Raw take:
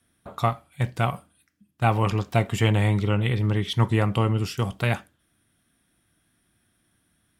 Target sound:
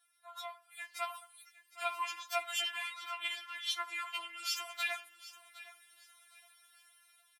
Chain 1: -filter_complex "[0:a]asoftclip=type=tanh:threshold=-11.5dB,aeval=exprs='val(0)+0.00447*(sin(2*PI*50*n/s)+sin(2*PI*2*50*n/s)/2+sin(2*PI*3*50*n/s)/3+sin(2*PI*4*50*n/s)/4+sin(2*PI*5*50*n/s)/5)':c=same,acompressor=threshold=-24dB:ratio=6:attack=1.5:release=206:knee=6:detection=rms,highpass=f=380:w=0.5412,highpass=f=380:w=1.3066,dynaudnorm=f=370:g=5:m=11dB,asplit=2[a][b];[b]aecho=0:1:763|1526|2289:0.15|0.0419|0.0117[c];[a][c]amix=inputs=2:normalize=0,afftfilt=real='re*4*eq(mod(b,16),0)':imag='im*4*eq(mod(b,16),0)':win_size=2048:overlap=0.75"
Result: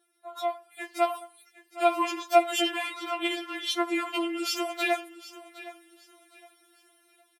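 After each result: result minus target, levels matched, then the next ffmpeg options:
500 Hz band +10.0 dB; compressor: peak gain reduction -6 dB
-filter_complex "[0:a]asoftclip=type=tanh:threshold=-11.5dB,aeval=exprs='val(0)+0.00447*(sin(2*PI*50*n/s)+sin(2*PI*2*50*n/s)/2+sin(2*PI*3*50*n/s)/3+sin(2*PI*4*50*n/s)/4+sin(2*PI*5*50*n/s)/5)':c=same,acompressor=threshold=-24dB:ratio=6:attack=1.5:release=206:knee=6:detection=rms,highpass=f=1k:w=0.5412,highpass=f=1k:w=1.3066,dynaudnorm=f=370:g=5:m=11dB,asplit=2[a][b];[b]aecho=0:1:763|1526|2289:0.15|0.0419|0.0117[c];[a][c]amix=inputs=2:normalize=0,afftfilt=real='re*4*eq(mod(b,16),0)':imag='im*4*eq(mod(b,16),0)':win_size=2048:overlap=0.75"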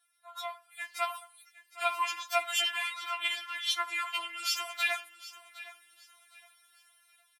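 compressor: peak gain reduction -6 dB
-filter_complex "[0:a]asoftclip=type=tanh:threshold=-11.5dB,aeval=exprs='val(0)+0.00447*(sin(2*PI*50*n/s)+sin(2*PI*2*50*n/s)/2+sin(2*PI*3*50*n/s)/3+sin(2*PI*4*50*n/s)/4+sin(2*PI*5*50*n/s)/5)':c=same,acompressor=threshold=-31.5dB:ratio=6:attack=1.5:release=206:knee=6:detection=rms,highpass=f=1k:w=0.5412,highpass=f=1k:w=1.3066,dynaudnorm=f=370:g=5:m=11dB,asplit=2[a][b];[b]aecho=0:1:763|1526|2289:0.15|0.0419|0.0117[c];[a][c]amix=inputs=2:normalize=0,afftfilt=real='re*4*eq(mod(b,16),0)':imag='im*4*eq(mod(b,16),0)':win_size=2048:overlap=0.75"

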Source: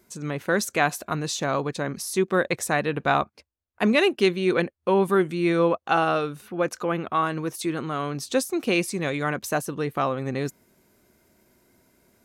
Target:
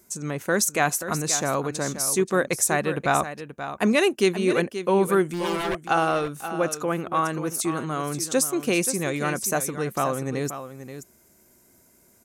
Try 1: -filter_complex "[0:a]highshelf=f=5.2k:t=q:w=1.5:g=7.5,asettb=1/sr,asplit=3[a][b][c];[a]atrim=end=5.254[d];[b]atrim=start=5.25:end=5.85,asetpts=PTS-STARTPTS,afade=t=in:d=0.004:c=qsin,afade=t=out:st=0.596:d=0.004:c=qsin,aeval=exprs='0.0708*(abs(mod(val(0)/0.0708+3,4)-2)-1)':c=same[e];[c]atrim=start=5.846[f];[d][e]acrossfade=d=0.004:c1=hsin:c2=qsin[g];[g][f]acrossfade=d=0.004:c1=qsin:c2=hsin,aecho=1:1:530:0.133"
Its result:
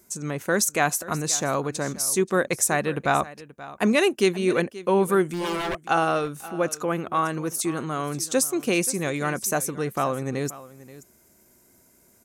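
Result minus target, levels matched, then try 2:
echo-to-direct -6.5 dB
-filter_complex "[0:a]highshelf=f=5.2k:t=q:w=1.5:g=7.5,asettb=1/sr,asplit=3[a][b][c];[a]atrim=end=5.254[d];[b]atrim=start=5.25:end=5.85,asetpts=PTS-STARTPTS,afade=t=in:d=0.004:c=qsin,afade=t=out:st=0.596:d=0.004:c=qsin,aeval=exprs='0.0708*(abs(mod(val(0)/0.0708+3,4)-2)-1)':c=same[e];[c]atrim=start=5.846[f];[d][e]acrossfade=d=0.004:c1=hsin:c2=qsin[g];[g][f]acrossfade=d=0.004:c1=qsin:c2=hsin,aecho=1:1:530:0.282"

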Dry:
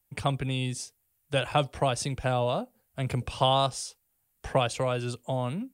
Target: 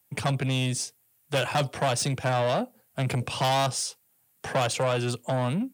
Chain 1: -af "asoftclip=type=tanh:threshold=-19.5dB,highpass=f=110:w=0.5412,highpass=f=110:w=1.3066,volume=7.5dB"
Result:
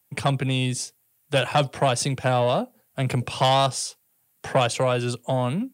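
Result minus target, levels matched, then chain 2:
soft clip: distortion -7 dB
-af "asoftclip=type=tanh:threshold=-28dB,highpass=f=110:w=0.5412,highpass=f=110:w=1.3066,volume=7.5dB"

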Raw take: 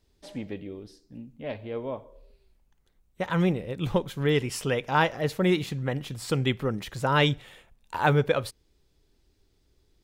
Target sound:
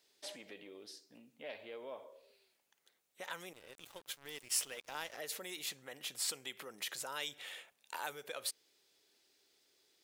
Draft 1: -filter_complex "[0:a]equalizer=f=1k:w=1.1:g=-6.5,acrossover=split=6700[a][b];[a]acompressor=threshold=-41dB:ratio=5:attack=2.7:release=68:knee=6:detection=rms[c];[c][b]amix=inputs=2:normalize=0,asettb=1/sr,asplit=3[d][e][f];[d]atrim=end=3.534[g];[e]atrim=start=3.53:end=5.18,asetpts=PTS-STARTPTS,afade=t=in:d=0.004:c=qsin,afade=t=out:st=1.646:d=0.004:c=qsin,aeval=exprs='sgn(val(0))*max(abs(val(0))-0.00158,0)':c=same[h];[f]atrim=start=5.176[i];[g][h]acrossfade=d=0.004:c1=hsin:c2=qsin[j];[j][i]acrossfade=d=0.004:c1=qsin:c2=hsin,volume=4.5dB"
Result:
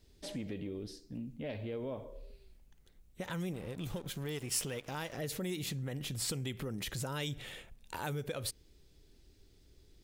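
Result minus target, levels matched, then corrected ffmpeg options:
500 Hz band +4.0 dB
-filter_complex "[0:a]equalizer=f=1k:w=1.1:g=-6.5,acrossover=split=6700[a][b];[a]acompressor=threshold=-41dB:ratio=5:attack=2.7:release=68:knee=6:detection=rms,highpass=680[c];[c][b]amix=inputs=2:normalize=0,asettb=1/sr,asplit=3[d][e][f];[d]atrim=end=3.534[g];[e]atrim=start=3.53:end=5.18,asetpts=PTS-STARTPTS,afade=t=in:d=0.004:c=qsin,afade=t=out:st=1.646:d=0.004:c=qsin,aeval=exprs='sgn(val(0))*max(abs(val(0))-0.00158,0)':c=same[h];[f]atrim=start=5.176[i];[g][h]acrossfade=d=0.004:c1=hsin:c2=qsin[j];[j][i]acrossfade=d=0.004:c1=qsin:c2=hsin,volume=4.5dB"

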